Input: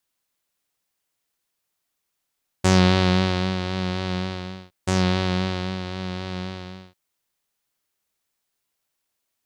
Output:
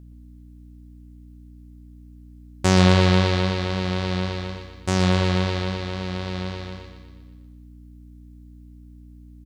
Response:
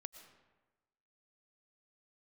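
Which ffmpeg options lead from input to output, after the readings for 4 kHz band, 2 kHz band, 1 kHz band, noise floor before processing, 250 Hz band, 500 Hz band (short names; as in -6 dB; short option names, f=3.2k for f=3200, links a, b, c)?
+1.0 dB, +1.0 dB, +1.0 dB, -79 dBFS, +0.5 dB, +2.0 dB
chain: -filter_complex "[0:a]aeval=exprs='val(0)+0.00708*(sin(2*PI*60*n/s)+sin(2*PI*2*60*n/s)/2+sin(2*PI*3*60*n/s)/3+sin(2*PI*4*60*n/s)/4+sin(2*PI*5*60*n/s)/5)':c=same,aecho=1:1:120|240|360|480|600|720|840:0.335|0.194|0.113|0.0654|0.0379|0.022|0.0128,asplit=2[a][b];[1:a]atrim=start_sample=2205,adelay=129[c];[b][c]afir=irnorm=-1:irlink=0,volume=-6.5dB[d];[a][d]amix=inputs=2:normalize=0"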